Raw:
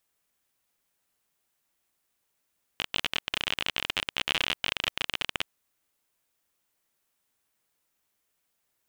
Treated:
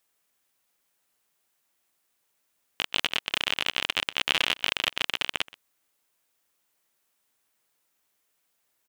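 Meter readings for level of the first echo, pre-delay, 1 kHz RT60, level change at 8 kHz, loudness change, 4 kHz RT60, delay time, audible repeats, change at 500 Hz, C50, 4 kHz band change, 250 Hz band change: -21.5 dB, no reverb, no reverb, +3.0 dB, +3.0 dB, no reverb, 126 ms, 1, +2.5 dB, no reverb, +3.0 dB, +1.0 dB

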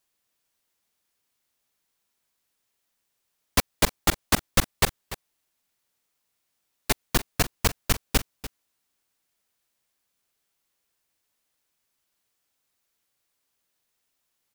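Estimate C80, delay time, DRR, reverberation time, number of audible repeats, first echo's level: no reverb, 293 ms, no reverb, no reverb, 1, -15.0 dB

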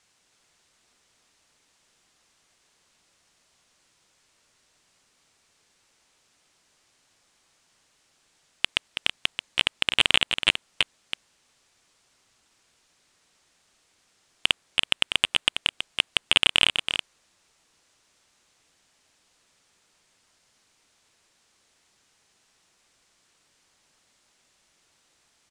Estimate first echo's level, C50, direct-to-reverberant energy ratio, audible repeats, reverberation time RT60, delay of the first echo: -7.5 dB, no reverb, no reverb, 1, no reverb, 326 ms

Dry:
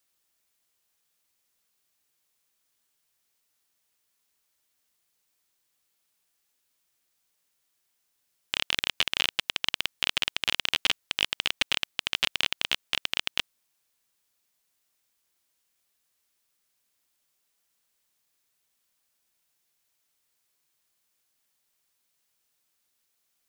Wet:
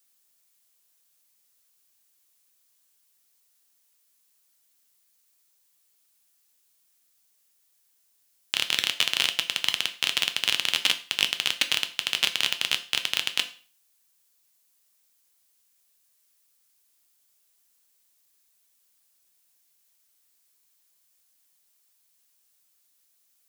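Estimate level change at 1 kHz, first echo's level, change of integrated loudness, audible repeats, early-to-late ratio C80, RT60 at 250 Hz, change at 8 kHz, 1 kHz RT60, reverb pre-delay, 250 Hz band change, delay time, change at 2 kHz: +0.5 dB, no echo, +2.5 dB, no echo, 18.5 dB, 0.40 s, +6.5 dB, 0.40 s, 6 ms, 0.0 dB, no echo, +1.5 dB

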